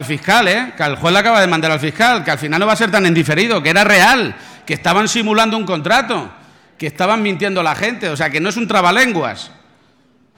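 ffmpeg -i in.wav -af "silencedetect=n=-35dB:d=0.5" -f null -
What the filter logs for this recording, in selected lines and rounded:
silence_start: 9.58
silence_end: 10.37 | silence_duration: 0.79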